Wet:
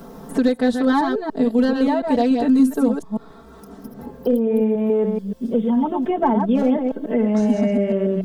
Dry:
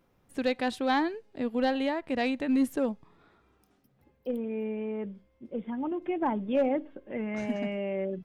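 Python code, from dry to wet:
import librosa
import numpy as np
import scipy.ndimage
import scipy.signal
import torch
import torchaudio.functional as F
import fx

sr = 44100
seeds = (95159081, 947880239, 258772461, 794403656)

y = fx.reverse_delay(x, sr, ms=144, wet_db=-5.5)
y = fx.peak_eq(y, sr, hz=2400.0, db=-14.5, octaves=0.94)
y = y + 0.99 * np.pad(y, (int(4.5 * sr / 1000.0), 0))[:len(y)]
y = fx.band_squash(y, sr, depth_pct=70)
y = y * librosa.db_to_amplitude(7.5)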